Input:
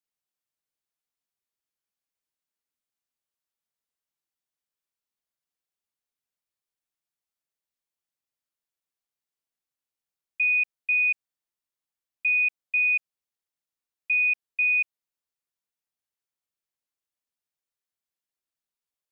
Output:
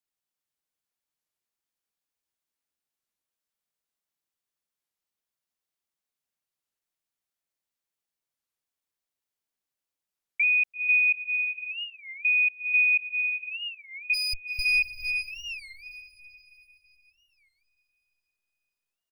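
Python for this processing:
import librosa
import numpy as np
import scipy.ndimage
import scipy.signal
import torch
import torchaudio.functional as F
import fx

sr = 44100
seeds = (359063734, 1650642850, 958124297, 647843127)

y = fx.lower_of_two(x, sr, delay_ms=1.8, at=(14.13, 14.64), fade=0.02)
y = fx.echo_diffused(y, sr, ms=459, feedback_pct=42, wet_db=-6.0)
y = fx.record_warp(y, sr, rpm=33.33, depth_cents=250.0)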